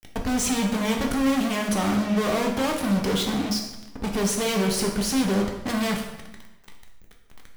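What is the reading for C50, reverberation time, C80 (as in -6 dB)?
5.5 dB, 0.95 s, 8.0 dB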